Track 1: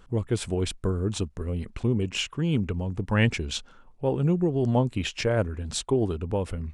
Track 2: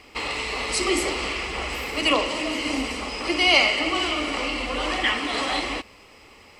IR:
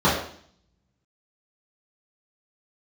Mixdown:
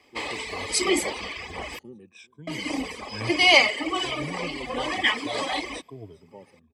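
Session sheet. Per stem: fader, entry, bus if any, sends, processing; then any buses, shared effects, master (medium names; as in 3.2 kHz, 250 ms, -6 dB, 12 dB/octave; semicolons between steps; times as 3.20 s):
-16.5 dB, 0.00 s, no send, echo send -20.5 dB, drifting ripple filter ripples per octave 1.7, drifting -1.1 Hz, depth 21 dB; high-pass 97 Hz 24 dB/octave
+0.5 dB, 0.00 s, muted 1.79–2.47 s, no send, no echo send, reverb removal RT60 1.4 s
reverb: none
echo: feedback delay 394 ms, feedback 45%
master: comb of notches 1.4 kHz; three bands expanded up and down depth 40%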